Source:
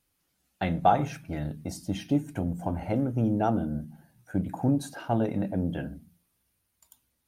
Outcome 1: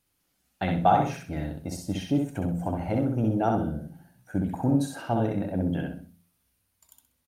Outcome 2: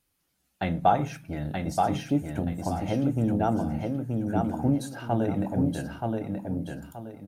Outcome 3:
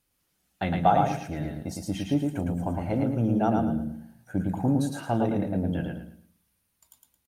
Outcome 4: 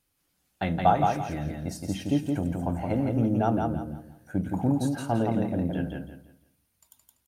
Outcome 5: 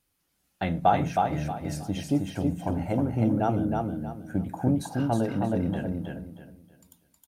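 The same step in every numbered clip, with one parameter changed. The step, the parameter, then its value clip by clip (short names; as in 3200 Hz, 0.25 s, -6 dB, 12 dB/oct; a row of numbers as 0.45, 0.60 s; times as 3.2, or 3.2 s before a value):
feedback echo, time: 64, 927, 110, 169, 316 ms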